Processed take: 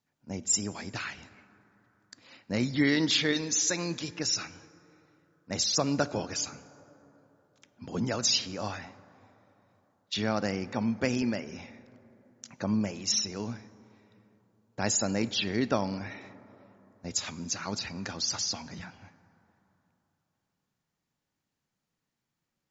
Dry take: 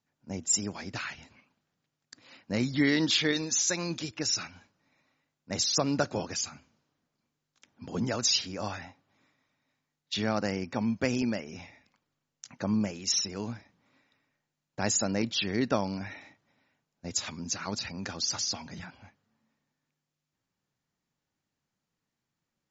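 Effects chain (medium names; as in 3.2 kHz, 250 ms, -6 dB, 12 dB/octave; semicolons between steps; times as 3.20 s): plate-style reverb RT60 3.5 s, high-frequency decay 0.35×, DRR 16 dB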